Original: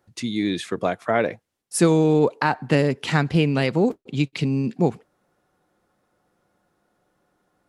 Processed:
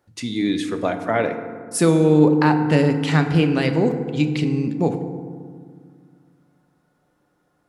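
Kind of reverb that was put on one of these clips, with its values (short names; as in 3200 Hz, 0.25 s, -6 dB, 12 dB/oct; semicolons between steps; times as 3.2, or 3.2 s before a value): FDN reverb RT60 1.9 s, low-frequency decay 1.45×, high-frequency decay 0.4×, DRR 6 dB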